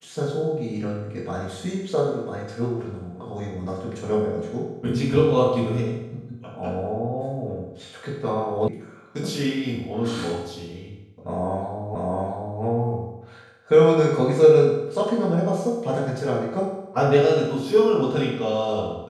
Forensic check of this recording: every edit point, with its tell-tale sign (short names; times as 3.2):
8.68 sound cut off
11.95 repeat of the last 0.67 s